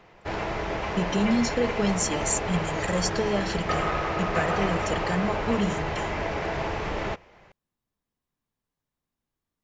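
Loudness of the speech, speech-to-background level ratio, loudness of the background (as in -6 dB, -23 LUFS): -28.5 LUFS, 0.5 dB, -29.0 LUFS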